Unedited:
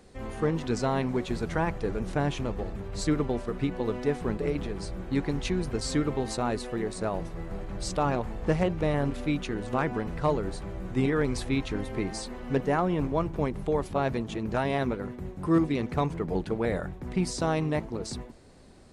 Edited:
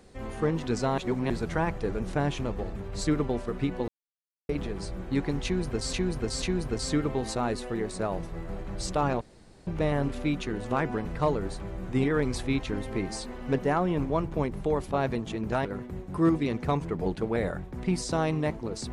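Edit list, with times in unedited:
0.98–1.3 reverse
3.88–4.49 mute
5.44–5.93 loop, 3 plays
8.23–8.69 room tone
14.67–14.94 cut

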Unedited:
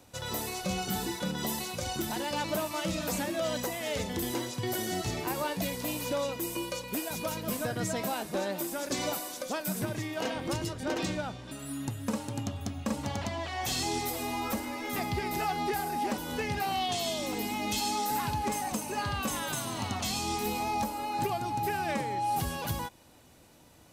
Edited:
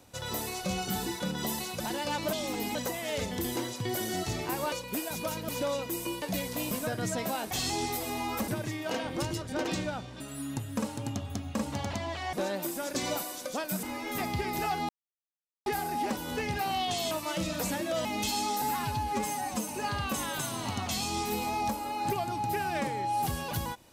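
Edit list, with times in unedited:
1.8–2.06 cut
2.59–3.53 swap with 17.12–17.54
5.5–5.99 swap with 6.72–7.49
8.29–9.79 swap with 13.64–14.61
15.67 insert silence 0.77 s
18.11–18.82 stretch 1.5×

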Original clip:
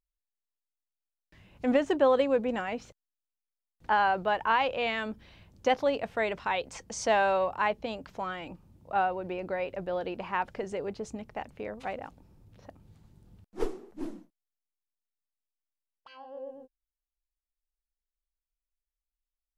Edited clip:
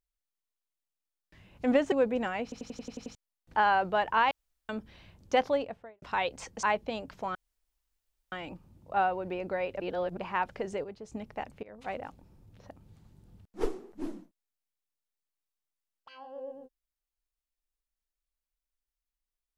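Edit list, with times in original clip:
1.92–2.25 cut
2.76 stutter in place 0.09 s, 8 plays
4.64–5.02 room tone
5.73–6.35 studio fade out
6.96–7.59 cut
8.31 insert room tone 0.97 s
9.79–10.16 reverse
10.83–11.11 gain -8 dB
11.62–11.94 fade in linear, from -23.5 dB

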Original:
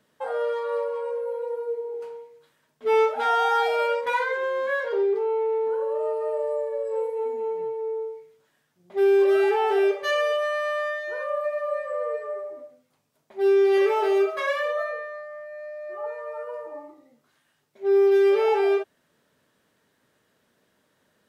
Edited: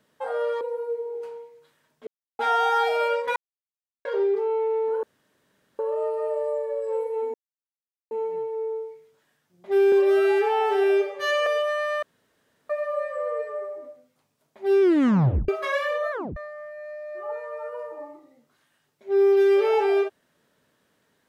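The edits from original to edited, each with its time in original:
0.61–1.4 cut
2.86–3.18 mute
4.15–4.84 mute
5.82 insert room tone 0.76 s
7.37 insert silence 0.77 s
9.18–10.21 stretch 1.5×
10.77–11.44 room tone
13.56 tape stop 0.67 s
14.86 tape stop 0.25 s

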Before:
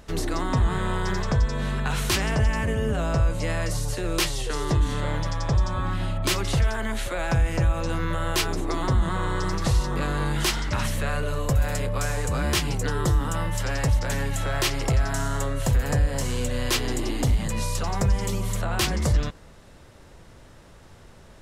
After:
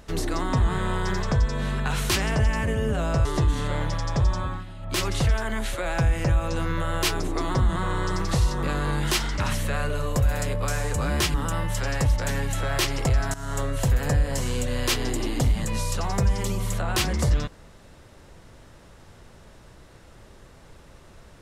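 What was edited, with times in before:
3.25–4.58 cut
5.72–6.38 dip -13 dB, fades 0.27 s
12.67–13.17 cut
15.17–15.43 fade in, from -17 dB

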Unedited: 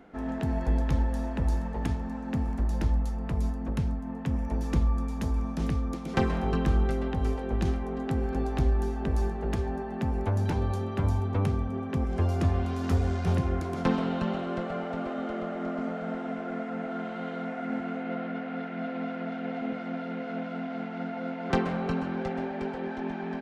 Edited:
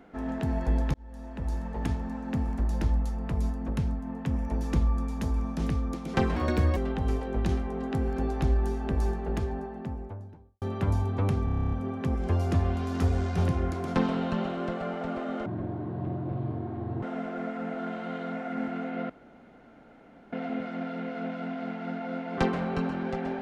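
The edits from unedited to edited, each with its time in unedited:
0.94–1.88 fade in
6.36–6.93 speed 140%
9.32–10.78 studio fade out
11.61 stutter 0.03 s, 10 plays
15.35–16.15 speed 51%
18.22–19.45 room tone

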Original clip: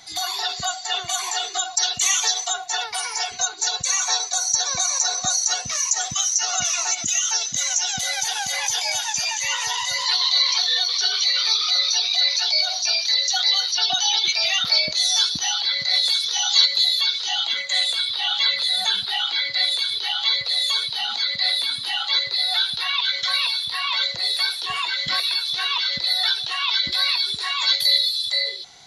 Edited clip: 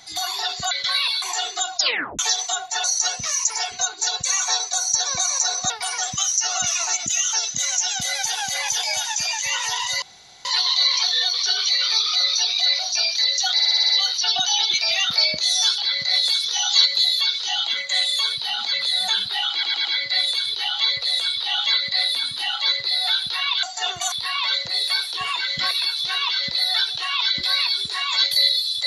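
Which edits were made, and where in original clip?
0.71–1.2 swap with 23.1–23.61
1.74 tape stop 0.43 s
2.82–3.1 swap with 5.3–5.96
10 insert room tone 0.43 s
12.34–12.69 cut
13.43 stutter 0.06 s, 7 plays
15.32–15.58 cut
17.92–18.5 swap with 20.63–21.24
19.29 stutter 0.11 s, 4 plays

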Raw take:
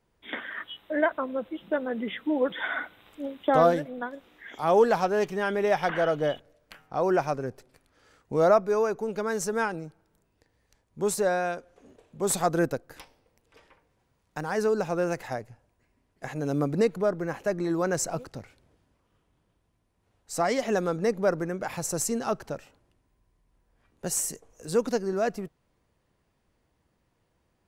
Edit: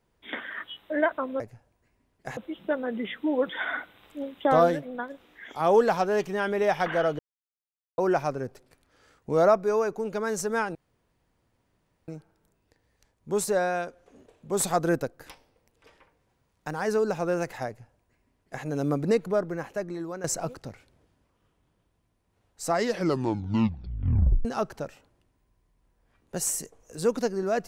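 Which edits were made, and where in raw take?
6.22–7.01 mute
9.78 insert room tone 1.33 s
15.37–16.34 copy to 1.4
17.07–17.94 fade out, to -12.5 dB
20.41 tape stop 1.74 s

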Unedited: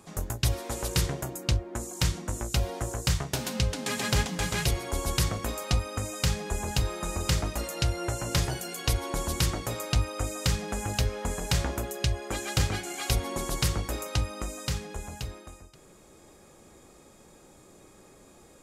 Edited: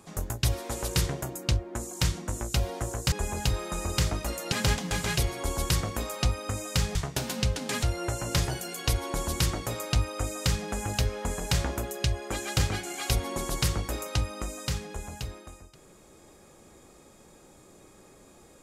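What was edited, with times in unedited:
3.12–4 swap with 6.43–7.83

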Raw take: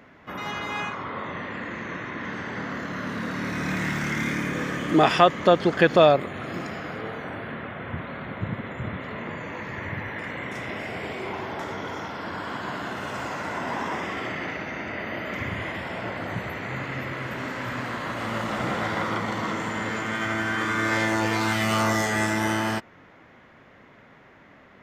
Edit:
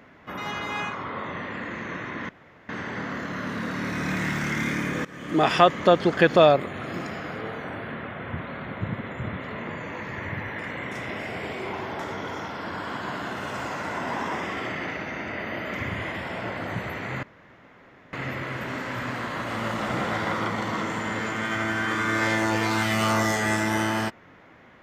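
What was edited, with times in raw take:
2.29 insert room tone 0.40 s
4.65–5.18 fade in, from -19.5 dB
16.83 insert room tone 0.90 s

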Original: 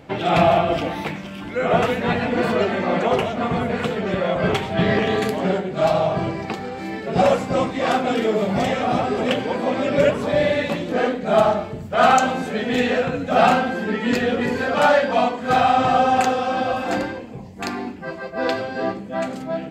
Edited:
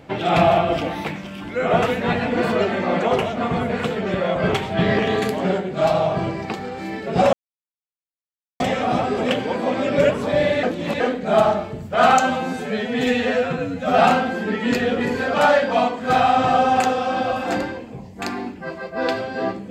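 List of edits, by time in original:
7.33–8.6 mute
10.63–11 reverse
12.2–13.39 stretch 1.5×

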